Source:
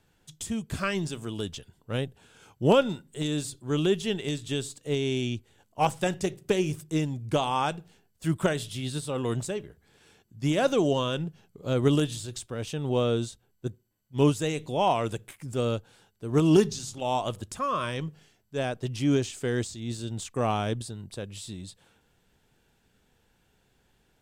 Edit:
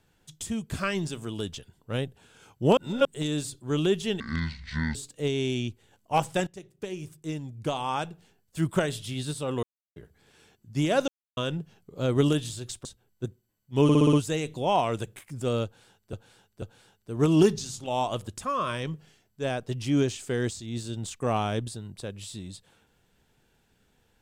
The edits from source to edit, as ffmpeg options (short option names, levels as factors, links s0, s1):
-filter_complex "[0:a]asplit=18[s0][s1][s2][s3][s4][s5][s6][s7][s8][s9][s10][s11][s12][s13][s14][s15][s16][s17];[s0]atrim=end=2.772[s18];[s1]atrim=start=2.768:end=3.052,asetpts=PTS-STARTPTS,areverse[s19];[s2]atrim=start=3.048:end=4.204[s20];[s3]atrim=start=4.2:end=4.62,asetpts=PTS-STARTPTS,asetrate=24696,aresample=44100[s21];[s4]atrim=start=4.616:end=6.14,asetpts=PTS-STARTPTS,afade=t=out:st=1.52:d=0.004:c=hsin:silence=0.133352[s22];[s5]atrim=start=6.14:end=9.3,asetpts=PTS-STARTPTS,afade=t=in:d=2.13:silence=0.133352,afade=t=out:st=3.156:d=0.004:c=hsin[s23];[s6]atrim=start=9.3:end=9.63,asetpts=PTS-STARTPTS,volume=0[s24];[s7]atrim=start=9.63:end=10.75,asetpts=PTS-STARTPTS,afade=t=in:d=0.004:c=hsin,afade=t=out:st=1.116:d=0.004:c=hsin[s25];[s8]atrim=start=10.75:end=11.04,asetpts=PTS-STARTPTS,volume=0[s26];[s9]atrim=start=11.04:end=12.522,asetpts=PTS-STARTPTS,afade=t=in:d=0.004:c=hsin[s27];[s10]atrim=start=13.268:end=14.312[s28];[s11]atrim=start=14.248:end=14.312[s29];[s12]atrim=start=14.248:end=14.312[s30];[s13]atrim=start=14.248:end=14.312[s31];[s14]atrim=start=14.248:end=14.312[s32];[s15]atrim=start=14.248:end=16.252[s33];[s16]atrim=start=15.758:end=16.252[s34];[s17]atrim=start=15.758[s35];[s18][s19]acrossfade=d=0.004:c1=hsin:c2=hsin[s36];[s36][s20]acrossfade=d=0.004:c1=hsin:c2=hsin[s37];[s37][s21]acrossfade=d=0.004:c1=hsin:c2=hsin[s38];[s22][s23][s24][s25][s26][s27]concat=n=6:v=0:a=1[s39];[s38][s39]acrossfade=d=0.004:c1=hsin:c2=hsin[s40];[s40][s28]acrossfade=d=0.004:c1=hsin:c2=hsin[s41];[s41][s29]acrossfade=d=0.004:c1=hsin:c2=hsin[s42];[s42][s30]acrossfade=d=0.004:c1=hsin:c2=hsin[s43];[s43][s31]acrossfade=d=0.004:c1=hsin:c2=hsin[s44];[s44][s32]acrossfade=d=0.004:c1=hsin:c2=hsin[s45];[s45][s33]acrossfade=d=0.004:c1=hsin:c2=hsin[s46];[s46][s34]acrossfade=d=0.004:c1=hsin:c2=hsin[s47];[s47][s35]acrossfade=d=0.004:c1=hsin:c2=hsin"